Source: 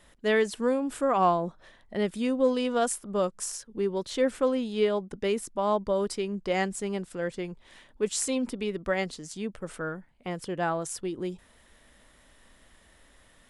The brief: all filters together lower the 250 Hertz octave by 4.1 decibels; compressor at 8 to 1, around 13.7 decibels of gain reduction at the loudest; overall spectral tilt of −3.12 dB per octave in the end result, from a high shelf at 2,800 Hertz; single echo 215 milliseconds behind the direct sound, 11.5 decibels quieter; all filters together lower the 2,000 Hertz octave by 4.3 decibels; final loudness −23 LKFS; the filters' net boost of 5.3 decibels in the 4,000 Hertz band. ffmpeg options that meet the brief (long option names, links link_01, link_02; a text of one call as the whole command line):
ffmpeg -i in.wav -af "equalizer=frequency=250:width_type=o:gain=-5,equalizer=frequency=2000:width_type=o:gain=-9,highshelf=frequency=2800:gain=7,equalizer=frequency=4000:width_type=o:gain=4.5,acompressor=threshold=-35dB:ratio=8,aecho=1:1:215:0.266,volume=16dB" out.wav